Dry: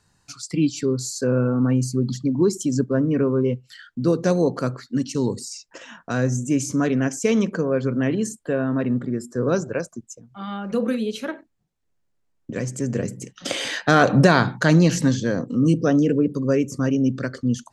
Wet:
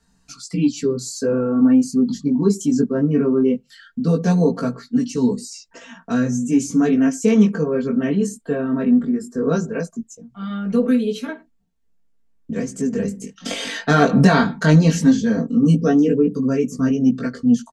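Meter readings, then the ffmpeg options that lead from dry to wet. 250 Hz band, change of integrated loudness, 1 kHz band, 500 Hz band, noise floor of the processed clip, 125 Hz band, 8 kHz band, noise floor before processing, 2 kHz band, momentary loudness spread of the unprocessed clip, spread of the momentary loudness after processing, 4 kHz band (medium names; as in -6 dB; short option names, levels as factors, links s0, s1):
+5.0 dB, +3.0 dB, +0.5 dB, +1.0 dB, -61 dBFS, +1.0 dB, -0.5 dB, -69 dBFS, -0.5 dB, 15 LU, 13 LU, -0.5 dB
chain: -filter_complex "[0:a]flanger=delay=16:depth=4.6:speed=0.18,aecho=1:1:4.4:0.9,acrossover=split=320|2300[s0][s1][s2];[s0]acontrast=51[s3];[s3][s1][s2]amix=inputs=3:normalize=0"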